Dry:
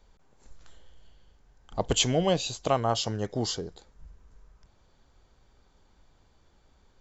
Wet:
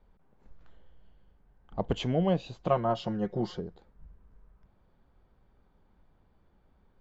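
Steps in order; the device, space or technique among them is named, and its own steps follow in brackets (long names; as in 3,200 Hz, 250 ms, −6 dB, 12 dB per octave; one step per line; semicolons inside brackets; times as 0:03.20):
phone in a pocket (low-pass filter 3,200 Hz 12 dB per octave; parametric band 190 Hz +5.5 dB 0.57 octaves; high-shelf EQ 2,500 Hz −10 dB)
0:02.65–0:03.60: comb filter 5.6 ms, depth 80%
level −3 dB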